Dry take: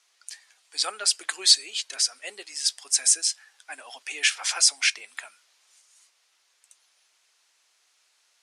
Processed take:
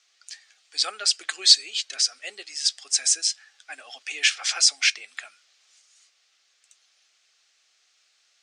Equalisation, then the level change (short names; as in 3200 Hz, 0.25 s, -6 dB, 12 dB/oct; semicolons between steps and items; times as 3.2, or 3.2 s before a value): running mean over 4 samples; Butterworth band-stop 960 Hz, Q 5.1; high shelf 2600 Hz +9.5 dB; -2.0 dB